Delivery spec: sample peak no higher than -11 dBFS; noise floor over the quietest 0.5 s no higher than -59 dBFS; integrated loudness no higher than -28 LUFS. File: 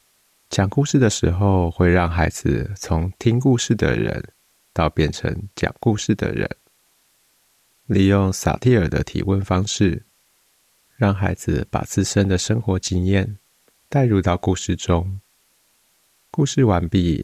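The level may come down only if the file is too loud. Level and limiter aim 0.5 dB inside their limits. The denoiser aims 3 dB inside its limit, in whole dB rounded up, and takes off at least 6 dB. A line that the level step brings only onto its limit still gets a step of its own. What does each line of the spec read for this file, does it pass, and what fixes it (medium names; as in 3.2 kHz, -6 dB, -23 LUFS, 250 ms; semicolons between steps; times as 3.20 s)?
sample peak -5.0 dBFS: fail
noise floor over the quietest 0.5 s -61 dBFS: pass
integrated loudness -20.0 LUFS: fail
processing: trim -8.5 dB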